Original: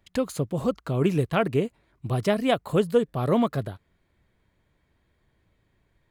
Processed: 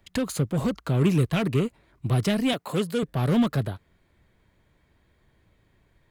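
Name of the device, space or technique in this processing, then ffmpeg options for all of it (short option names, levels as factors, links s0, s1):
one-band saturation: -filter_complex "[0:a]acrossover=split=270|2300[s0][s1][s2];[s1]asoftclip=type=tanh:threshold=0.0224[s3];[s0][s3][s2]amix=inputs=3:normalize=0,asettb=1/sr,asplit=3[s4][s5][s6];[s4]atrim=end=2.534[s7];[s5]atrim=start=2.53:end=3.03,asetpts=PTS-STARTPTS,afade=t=in:d=0.004:c=qsin,afade=t=out:st=0.496:d=0.004:c=qsin,highpass=220[s8];[s6]atrim=start=3.026[s9];[s7][s8]acrossfade=d=0.004:c1=hsin:c2=qsin[s10];[s10][s9]acrossfade=d=0.004:c1=qsin:c2=hsin,volume=1.68"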